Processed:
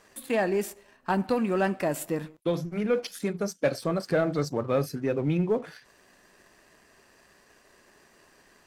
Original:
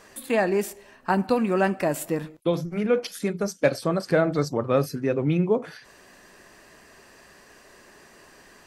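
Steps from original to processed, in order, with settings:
leveller curve on the samples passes 1
level −6.5 dB

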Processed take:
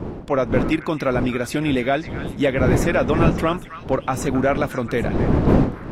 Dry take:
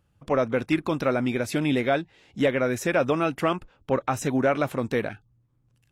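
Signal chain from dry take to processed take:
wind on the microphone 310 Hz −26 dBFS
echo through a band-pass that steps 269 ms, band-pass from 1,600 Hz, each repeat 1.4 octaves, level −8.5 dB
level +3 dB

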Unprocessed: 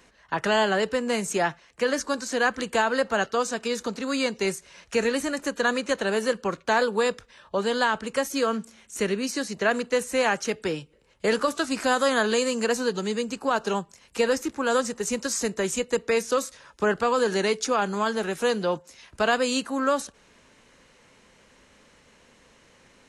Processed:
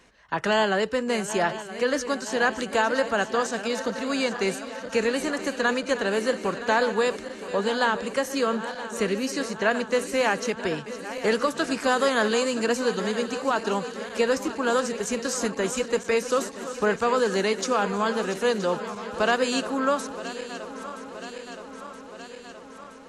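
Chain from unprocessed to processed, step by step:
feedback delay that plays each chunk backwards 486 ms, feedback 81%, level −13 dB
high-shelf EQ 8,900 Hz −5.5 dB

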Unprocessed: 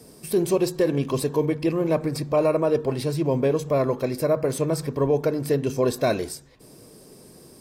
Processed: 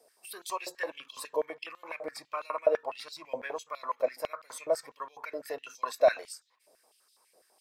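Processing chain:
noise reduction from a noise print of the clip's start 8 dB
high-pass on a step sequencer 12 Hz 600–3,700 Hz
level −8.5 dB

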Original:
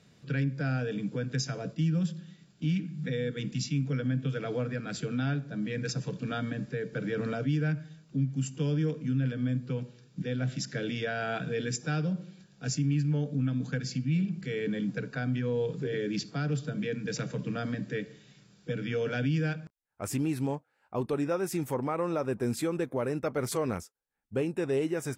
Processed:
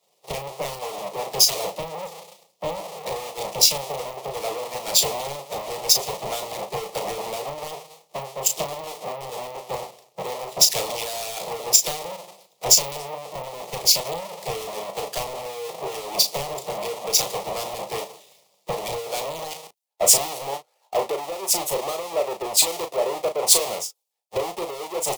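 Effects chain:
each half-wave held at its own peak
high-pass filter 450 Hz 12 dB per octave
downward compressor 16 to 1, threshold −34 dBFS, peak gain reduction 13 dB
sine wavefolder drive 13 dB, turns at −18 dBFS
phaser with its sweep stopped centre 640 Hz, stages 4
harmonic and percussive parts rebalanced percussive +9 dB
double-tracking delay 36 ms −7 dB
multiband upward and downward expander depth 100%
level −5 dB

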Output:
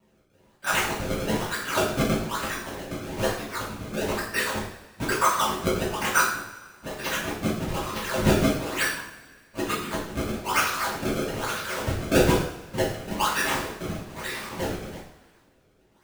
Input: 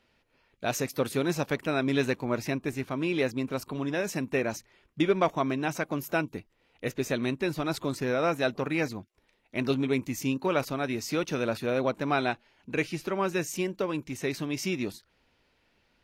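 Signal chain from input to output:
first-order pre-emphasis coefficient 0.9
hum removal 47.89 Hz, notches 30
random phases in short frames
in parallel at +1 dB: output level in coarse steps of 21 dB
on the sum: flat-topped bell 1,300 Hz +14.5 dB 1.1 octaves
sample-and-hold swept by an LFO 27×, swing 160% 1.1 Hz
coupled-rooms reverb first 0.59 s, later 1.9 s, from −18 dB, DRR −8 dB

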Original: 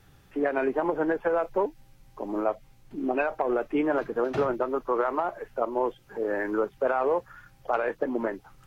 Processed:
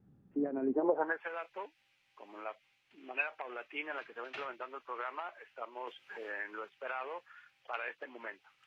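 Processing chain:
band-pass filter sweep 210 Hz → 2,600 Hz, 0:00.68–0:01.26
0:05.87–0:06.70: multiband upward and downward compressor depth 70%
level +2 dB

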